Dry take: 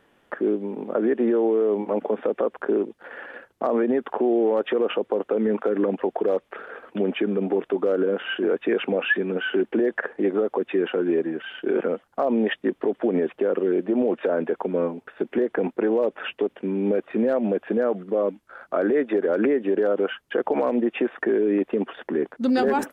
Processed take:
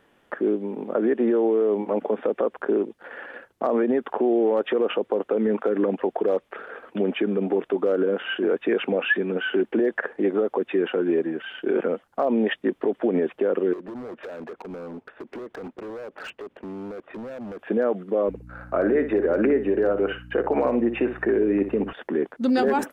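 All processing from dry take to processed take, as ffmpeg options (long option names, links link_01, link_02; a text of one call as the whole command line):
ffmpeg -i in.wav -filter_complex "[0:a]asettb=1/sr,asplit=3[link_01][link_02][link_03];[link_01]atrim=end=13.734[link_04];[link_02]atrim=start=13.73:end=17.59,asetpts=PTS-STARTPTS,afade=type=in:duration=0.004:curve=qsin,afade=type=out:start_time=3.856:duration=0.004:curve=qsin,lowpass=frequency=1800:poles=1,acompressor=threshold=-29dB:ratio=5:attack=3.2:release=140:knee=1:detection=peak,asoftclip=type=hard:threshold=-32.5dB[link_05];[link_03]atrim=start=17.586[link_06];[link_04][link_05]acrossfade=duration=0.004:curve1=hsin:curve2=qsin[link_07];[link_07][link_06]acrossfade=duration=0.004:curve1=qsin:curve2=hsin,asettb=1/sr,asplit=3[link_08][link_09][link_10];[link_08]atrim=end=18.284[link_11];[link_09]atrim=start=18.28:end=21.93,asetpts=PTS-STARTPTS,afade=type=in:duration=0.004:curve=qsin,afade=type=out:start_time=3.646:duration=0.004:curve=qsin,bandreject=frequency=3300:width=5.5,aeval=exprs='val(0)+0.00891*(sin(2*PI*60*n/s)+sin(2*PI*2*60*n/s)/2+sin(2*PI*3*60*n/s)/3+sin(2*PI*4*60*n/s)/4+sin(2*PI*5*60*n/s)/5)':channel_layout=same,asplit=2[link_12][link_13];[link_13]adelay=60,lowpass=frequency=3200:poles=1,volume=-9.5dB,asplit=2[link_14][link_15];[link_15]adelay=60,lowpass=frequency=3200:poles=1,volume=0.17[link_16];[link_12][link_14][link_16]amix=inputs=3:normalize=0,atrim=end_sample=160965[link_17];[link_10]atrim=start=21.926[link_18];[link_11][link_17]acrossfade=duration=0.004:curve1=hsin:curve2=qsin[link_19];[link_19][link_18]acrossfade=duration=0.004:curve1=qsin:curve2=hsin" out.wav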